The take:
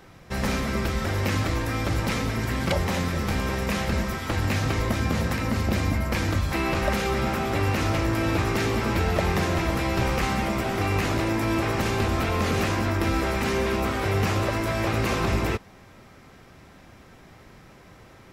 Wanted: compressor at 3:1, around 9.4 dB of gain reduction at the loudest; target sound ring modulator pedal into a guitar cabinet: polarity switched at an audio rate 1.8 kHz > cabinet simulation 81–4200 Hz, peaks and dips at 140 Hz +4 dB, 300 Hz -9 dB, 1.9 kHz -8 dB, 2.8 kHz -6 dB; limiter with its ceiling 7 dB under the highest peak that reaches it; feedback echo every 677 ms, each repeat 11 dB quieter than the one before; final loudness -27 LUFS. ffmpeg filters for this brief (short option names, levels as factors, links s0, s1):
-af "acompressor=threshold=0.0224:ratio=3,alimiter=level_in=1.33:limit=0.0631:level=0:latency=1,volume=0.75,aecho=1:1:677|1354|2031:0.282|0.0789|0.0221,aeval=exprs='val(0)*sgn(sin(2*PI*1800*n/s))':c=same,highpass=81,equalizer=f=140:t=q:w=4:g=4,equalizer=f=300:t=q:w=4:g=-9,equalizer=f=1900:t=q:w=4:g=-8,equalizer=f=2800:t=q:w=4:g=-6,lowpass=f=4200:w=0.5412,lowpass=f=4200:w=1.3066,volume=3.55"